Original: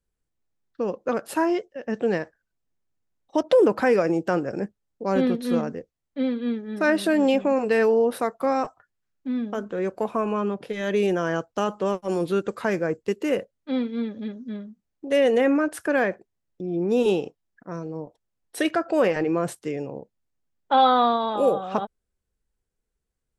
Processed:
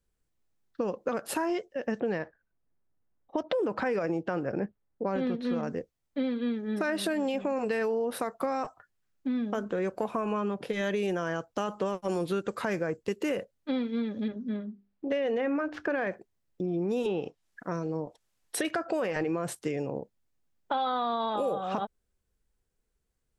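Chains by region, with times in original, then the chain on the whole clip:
0:02.00–0:05.63: low-pass filter 4,000 Hz 6 dB per octave + low-pass that shuts in the quiet parts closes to 1,700 Hz, open at −14.5 dBFS
0:14.28–0:16.07: running median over 5 samples + high-frequency loss of the air 150 metres + mains-hum notches 50/100/150/200/250/300/350/400 Hz
0:17.05–0:18.65: treble cut that deepens with the level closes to 2,400 Hz, closed at −17.5 dBFS + one half of a high-frequency compander encoder only
whole clip: dynamic equaliser 340 Hz, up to −3 dB, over −29 dBFS, Q 0.92; brickwall limiter −17.5 dBFS; downward compressor 4 to 1, threshold −29 dBFS; level +2 dB

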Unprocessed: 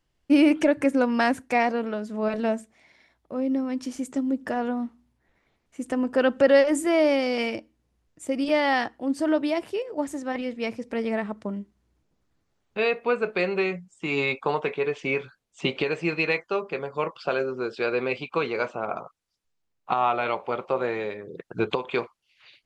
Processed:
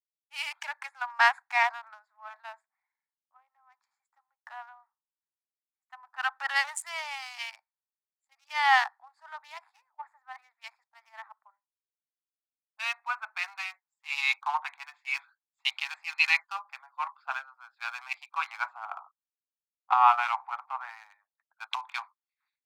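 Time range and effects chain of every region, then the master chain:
0:10.88–0:13.58: high-frequency loss of the air 76 metres + low-pass that shuts in the quiet parts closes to 340 Hz, open at −22 dBFS
whole clip: adaptive Wiener filter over 15 samples; Butterworth high-pass 800 Hz 72 dB per octave; multiband upward and downward expander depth 100%; level −2 dB

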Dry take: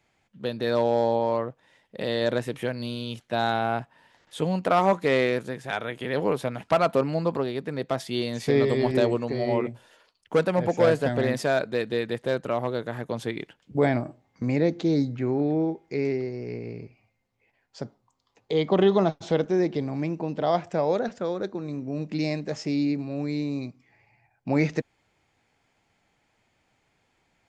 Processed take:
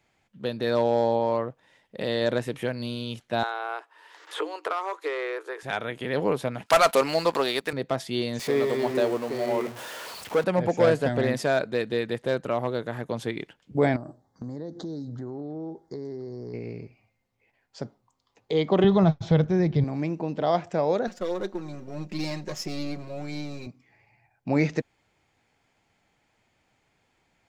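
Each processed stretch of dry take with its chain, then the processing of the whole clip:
0:03.43–0:05.63: Chebyshev high-pass with heavy ripple 300 Hz, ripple 9 dB + low-shelf EQ 480 Hz −4.5 dB + multiband upward and downward compressor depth 100%
0:06.66–0:07.73: high-pass filter 280 Hz 6 dB per octave + spectral tilt +3.5 dB per octave + leveller curve on the samples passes 2
0:08.39–0:10.44: converter with a step at zero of −30 dBFS + high-pass filter 790 Hz 6 dB per octave + tilt shelving filter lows +4.5 dB, about 1,200 Hz
0:13.96–0:16.54: Butterworth band-reject 2,500 Hz, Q 1.1 + downward compressor, threshold −32 dBFS
0:18.84–0:19.84: low-pass filter 5,500 Hz + low shelf with overshoot 190 Hz +12 dB, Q 1.5 + notch filter 2,800 Hz, Q 16
0:21.07–0:23.67: gain on one half-wave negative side −7 dB + bass and treble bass −3 dB, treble +6 dB + comb filter 5.5 ms, depth 67%
whole clip: no processing

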